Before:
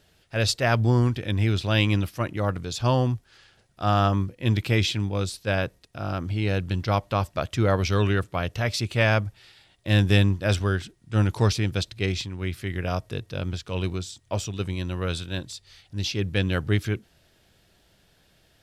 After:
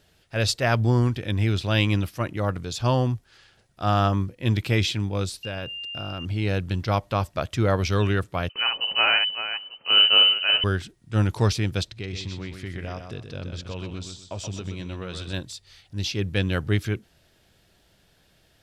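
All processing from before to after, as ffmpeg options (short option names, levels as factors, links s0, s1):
-filter_complex "[0:a]asettb=1/sr,asplit=3[s0][s1][s2];[s0]atrim=end=5.434[s3];[s1]atrim=start=5.43:end=6.25,asetpts=PTS-STARTPTS,afade=t=in:d=0.004:c=qsin,afade=t=out:st=0.816:d=0.004:c=qsin,aeval=exprs='val(0)+0.0251*sin(2*PI*2800*n/s)':c=same,acompressor=threshold=0.0398:ratio=5:attack=3.2:release=140:knee=1:detection=peak[s4];[s2]atrim=start=6.246[s5];[s3][s4]acrossfade=d=0.004:c1=hsin:c2=qsin[s6];[s6][s5]acrossfade=d=0.004:c1=qsin:c2=hsin,asettb=1/sr,asplit=3[s7][s8][s9];[s7]atrim=end=8.494[s10];[s8]atrim=start=8.49:end=10.64,asetpts=PTS-STARTPTS,afade=t=in:d=0.004:c=qsin,afade=t=out:st=2.146:d=0.004:c=qsin,aecho=1:1:58|387|896:0.596|0.316|0.168,atrim=end_sample=94815,lowpass=f=2600:t=q:w=0.5098,lowpass=f=2600:t=q:w=0.6013,lowpass=f=2600:t=q:w=0.9,lowpass=f=2600:t=q:w=2.563,afreqshift=-3100[s11];[s9]atrim=start=10.636[s12];[s10][s11]acrossfade=d=0.004:c1=hsin:c2=qsin[s13];[s13][s12]acrossfade=d=0.004:c1=qsin:c2=hsin,asettb=1/sr,asplit=3[s14][s15][s16];[s14]atrim=end=11.874[s17];[s15]atrim=start=11.87:end=15.33,asetpts=PTS-STARTPTS,afade=t=in:d=0.004:c=qsin,afade=t=out:st=3.456:d=0.004:c=qsin,lowpass=7600,acompressor=threshold=0.0355:ratio=6:attack=3.2:release=140:knee=1:detection=peak,aecho=1:1:126|252|378|504:0.447|0.13|0.0376|0.0109,atrim=end_sample=152586[s18];[s16]atrim=start=15.326[s19];[s17][s18]acrossfade=d=0.004:c1=hsin:c2=qsin[s20];[s20][s19]acrossfade=d=0.004:c1=qsin:c2=hsin"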